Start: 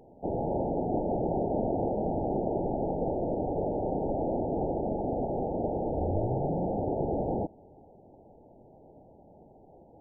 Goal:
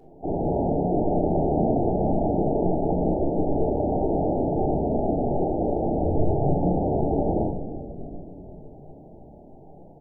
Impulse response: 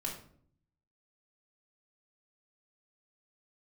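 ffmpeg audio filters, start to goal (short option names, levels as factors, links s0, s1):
-filter_complex "[0:a]asplit=8[s0][s1][s2][s3][s4][s5][s6][s7];[s1]adelay=362,afreqshift=-53,volume=0.237[s8];[s2]adelay=724,afreqshift=-106,volume=0.145[s9];[s3]adelay=1086,afreqshift=-159,volume=0.0881[s10];[s4]adelay=1448,afreqshift=-212,volume=0.0537[s11];[s5]adelay=1810,afreqshift=-265,volume=0.0327[s12];[s6]adelay=2172,afreqshift=-318,volume=0.02[s13];[s7]adelay=2534,afreqshift=-371,volume=0.0122[s14];[s0][s8][s9][s10][s11][s12][s13][s14]amix=inputs=8:normalize=0[s15];[1:a]atrim=start_sample=2205[s16];[s15][s16]afir=irnorm=-1:irlink=0,volume=1.5"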